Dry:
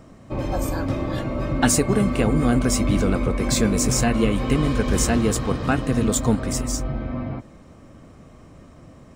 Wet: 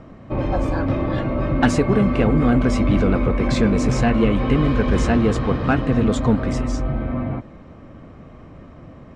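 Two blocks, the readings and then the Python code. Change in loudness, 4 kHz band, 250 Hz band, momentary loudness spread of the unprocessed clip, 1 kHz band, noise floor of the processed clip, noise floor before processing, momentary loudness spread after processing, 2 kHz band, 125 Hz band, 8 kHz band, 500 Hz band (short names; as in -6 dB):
+2.0 dB, -3.5 dB, +3.0 dB, 9 LU, +3.0 dB, -42 dBFS, -47 dBFS, 7 LU, +2.0 dB, +3.0 dB, -13.5 dB, +3.0 dB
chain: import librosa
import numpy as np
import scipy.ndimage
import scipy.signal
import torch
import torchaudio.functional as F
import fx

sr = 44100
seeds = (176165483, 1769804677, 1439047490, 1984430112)

p1 = scipy.signal.sosfilt(scipy.signal.butter(2, 2900.0, 'lowpass', fs=sr, output='sos'), x)
p2 = 10.0 ** (-20.5 / 20.0) * np.tanh(p1 / 10.0 ** (-20.5 / 20.0))
y = p1 + (p2 * 10.0 ** (-3.0 / 20.0))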